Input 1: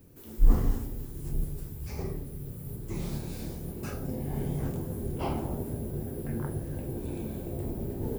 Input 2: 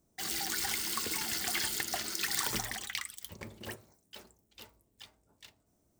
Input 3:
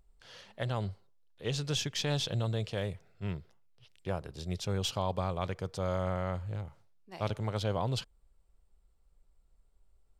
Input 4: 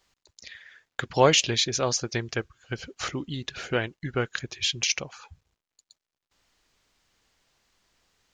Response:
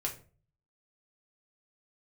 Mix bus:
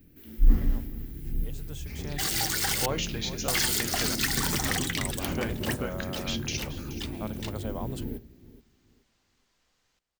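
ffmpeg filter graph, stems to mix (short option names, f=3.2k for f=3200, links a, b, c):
-filter_complex "[0:a]equalizer=f=125:t=o:w=1:g=-6,equalizer=f=250:t=o:w=1:g=3,equalizer=f=500:t=o:w=1:g=-8,equalizer=f=1k:t=o:w=1:g=-12,equalizer=f=2k:t=o:w=1:g=5,equalizer=f=8k:t=o:w=1:g=-11,volume=-0.5dB,asplit=3[a][b][c];[b]volume=-12.5dB[d];[c]volume=-16dB[e];[1:a]adelay=2000,volume=1.5dB,asplit=3[f][g][h];[f]atrim=end=2.86,asetpts=PTS-STARTPTS,afade=t=out:st=2.856:d=0.004:c=hsin[i];[g]atrim=start=2.86:end=3.48,asetpts=PTS-STARTPTS,volume=0[j];[h]atrim=start=3.48,asetpts=PTS-STARTPTS,afade=t=in:d=0.004:c=hsin[k];[i][j][k]concat=n=3:v=0:a=1[l];[2:a]highpass=110,highshelf=f=3.5k:g=-10,aexciter=amount=2.9:drive=9.9:freq=7.1k,volume=-14.5dB[m];[3:a]acompressor=threshold=-31dB:ratio=2,adelay=1650,volume=-7dB,asplit=3[n][o][p];[o]volume=-6.5dB[q];[p]volume=-11.5dB[r];[l][m]amix=inputs=2:normalize=0,dynaudnorm=f=320:g=13:m=12dB,alimiter=limit=-14.5dB:level=0:latency=1:release=112,volume=0dB[s];[4:a]atrim=start_sample=2205[t];[d][q]amix=inputs=2:normalize=0[u];[u][t]afir=irnorm=-1:irlink=0[v];[e][r]amix=inputs=2:normalize=0,aecho=0:1:426|852|1278|1704:1|0.23|0.0529|0.0122[w];[a][n][s][v][w]amix=inputs=5:normalize=0"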